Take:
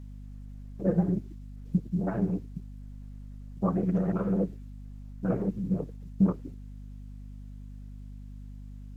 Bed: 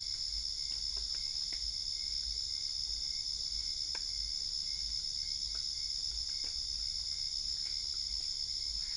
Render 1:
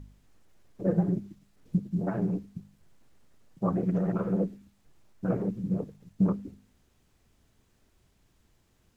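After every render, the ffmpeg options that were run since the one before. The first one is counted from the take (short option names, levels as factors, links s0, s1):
-af "bandreject=f=50:t=h:w=4,bandreject=f=100:t=h:w=4,bandreject=f=150:t=h:w=4,bandreject=f=200:t=h:w=4,bandreject=f=250:t=h:w=4"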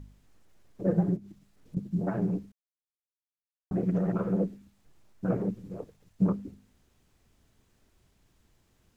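-filter_complex "[0:a]asettb=1/sr,asplit=3[s0][s1][s2];[s0]atrim=end=1.164[s3];[s1]atrim=start=1.16:end=1.77,asetpts=PTS-STARTPTS,afade=t=in:d=0.004:c=qsin,afade=t=out:st=0.606:d=0.004:c=qsin,acompressor=threshold=0.00708:ratio=2.5:attack=3.2:release=140:knee=1:detection=peak[s4];[s2]atrim=start=1.766[s5];[s3][s4]acrossfade=d=0.004:c1=hsin:c2=qsin[s6];[s6][s5]acrossfade=d=0.004:c1=qsin:c2=hsin,asettb=1/sr,asplit=3[s7][s8][s9];[s7]atrim=end=5.544[s10];[s8]atrim=start=5.54:end=6.22,asetpts=PTS-STARTPTS,afade=t=in:d=0.004:c=qsin,afade=t=out:st=0.676:d=0.004:c=qsin,equalizer=f=180:t=o:w=1.5:g=-14[s11];[s9]atrim=start=6.216[s12];[s10][s11]acrossfade=d=0.004:c1=hsin:c2=qsin[s13];[s13][s12]acrossfade=d=0.004:c1=qsin:c2=hsin,asplit=3[s14][s15][s16];[s14]atrim=end=2.52,asetpts=PTS-STARTPTS,afade=t=out:st=2.516:d=0.004:c=hsin[s17];[s15]atrim=start=2.52:end=3.71,asetpts=PTS-STARTPTS,volume=0[s18];[s16]atrim=start=3.71,asetpts=PTS-STARTPTS,afade=t=in:d=0.004:c=hsin[s19];[s17][s18][s19]concat=n=3:v=0:a=1"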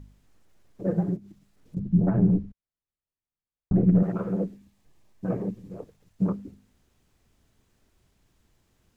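-filter_complex "[0:a]asettb=1/sr,asplit=3[s0][s1][s2];[s0]atrim=end=1.794[s3];[s1]atrim=start=1.79:end=4.03,asetpts=PTS-STARTPTS,afade=t=in:d=0.004:c=qsin,afade=t=out:st=2.236:d=0.004:c=qsin,aemphasis=mode=reproduction:type=riaa[s4];[s2]atrim=start=4.026[s5];[s3][s4]acrossfade=d=0.004:c1=hsin:c2=qsin[s6];[s6][s5]acrossfade=d=0.004:c1=qsin:c2=hsin,asettb=1/sr,asplit=3[s7][s8][s9];[s7]atrim=end=4.534[s10];[s8]atrim=start=4.53:end=5.7,asetpts=PTS-STARTPTS,afade=t=in:d=0.004:c=qsin,afade=t=out:st=1.166:d=0.004:c=qsin,asuperstop=centerf=1400:order=4:qfactor=7.6[s11];[s9]atrim=start=5.696[s12];[s10][s11]acrossfade=d=0.004:c1=hsin:c2=qsin[s13];[s13][s12]acrossfade=d=0.004:c1=qsin:c2=hsin"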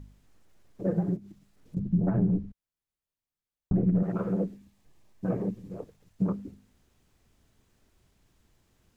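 -af "acompressor=threshold=0.0708:ratio=2.5"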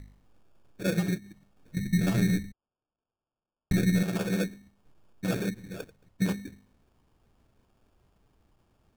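-af "acrusher=samples=22:mix=1:aa=0.000001"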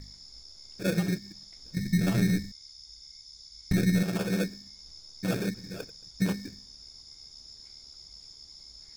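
-filter_complex "[1:a]volume=0.266[s0];[0:a][s0]amix=inputs=2:normalize=0"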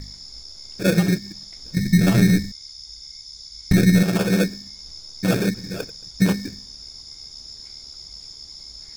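-af "volume=2.99"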